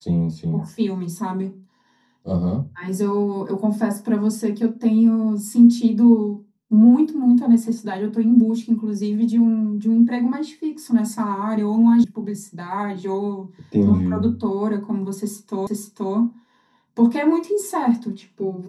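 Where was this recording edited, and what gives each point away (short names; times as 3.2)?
12.04 sound cut off
15.67 repeat of the last 0.48 s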